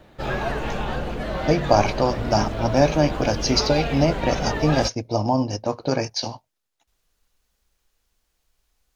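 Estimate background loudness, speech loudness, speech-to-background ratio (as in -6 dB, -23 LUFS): -28.0 LUFS, -22.5 LUFS, 5.5 dB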